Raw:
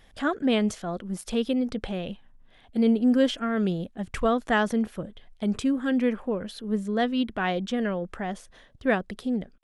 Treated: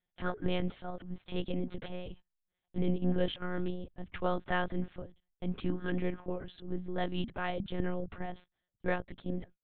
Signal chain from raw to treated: gate -41 dBFS, range -25 dB; 7.79–8.26 bell 110 Hz +14 dB 1.3 oct; monotone LPC vocoder at 8 kHz 180 Hz; gain -8 dB

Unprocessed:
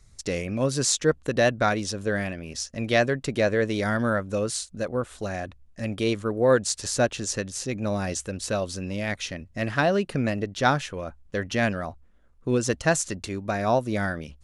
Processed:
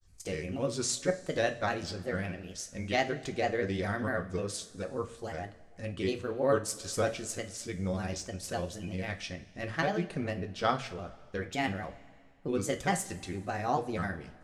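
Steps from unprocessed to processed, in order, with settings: grains, spray 13 ms, pitch spread up and down by 3 st; two-slope reverb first 0.29 s, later 2 s, from -18 dB, DRR 5.5 dB; gain -7.5 dB

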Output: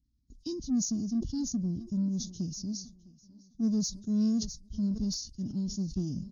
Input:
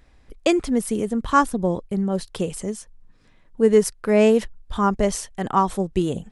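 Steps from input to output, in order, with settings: nonlinear frequency compression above 2500 Hz 1.5:1; elliptic band-stop 260–4800 Hz, stop band 40 dB; gate -45 dBFS, range -12 dB; in parallel at -9 dB: soft clip -27.5 dBFS, distortion -9 dB; on the sum: HPF 45 Hz 12 dB/oct; on a send: feedback echo 0.656 s, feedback 41%, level -22 dB; on the sum: sustainer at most 100 dB/s; gain -7 dB

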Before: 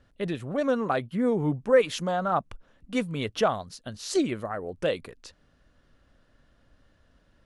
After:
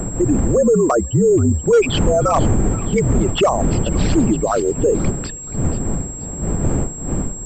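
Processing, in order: formant sharpening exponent 3; wind noise 240 Hz -33 dBFS; in parallel at +2.5 dB: compressor 6:1, threshold -35 dBFS, peak gain reduction 18.5 dB; on the sum: frequency shift -51 Hz; hard clip -14.5 dBFS, distortion -20 dB; on a send: thin delay 0.479 s, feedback 40%, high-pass 2300 Hz, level -11.5 dB; on the sum: maximiser +19 dB; pulse-width modulation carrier 7600 Hz; gain -7 dB

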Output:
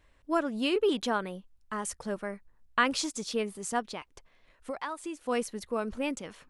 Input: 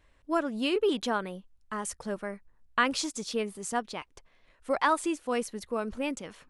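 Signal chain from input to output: 3.94–5.21 compressor 4:1, threshold -35 dBFS, peak gain reduction 12.5 dB

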